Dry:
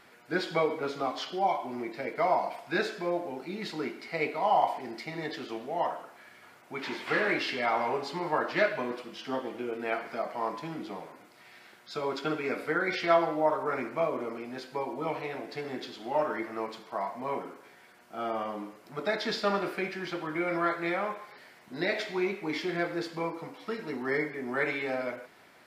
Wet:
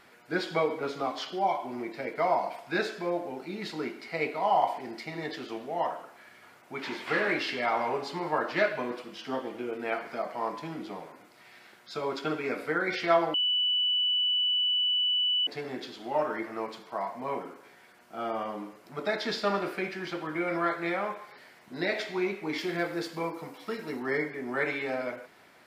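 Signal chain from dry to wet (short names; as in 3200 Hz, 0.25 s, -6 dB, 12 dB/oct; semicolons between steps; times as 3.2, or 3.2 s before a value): 13.34–15.47 bleep 2970 Hz -23.5 dBFS; 22.58–24 high shelf 8700 Hz +10.5 dB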